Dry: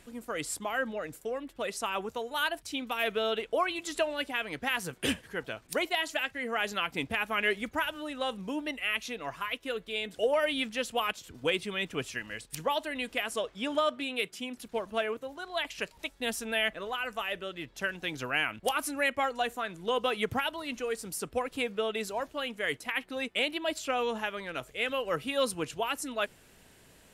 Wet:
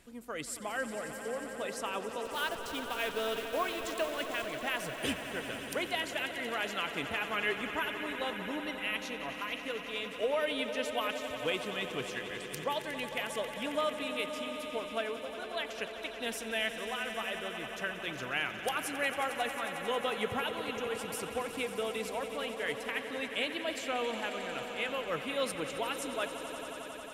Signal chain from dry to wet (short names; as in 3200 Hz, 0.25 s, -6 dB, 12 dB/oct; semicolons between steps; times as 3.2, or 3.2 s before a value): 2.25–4.46 level-crossing sampler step -36.5 dBFS; swelling echo 90 ms, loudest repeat 5, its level -13 dB; gain -4.5 dB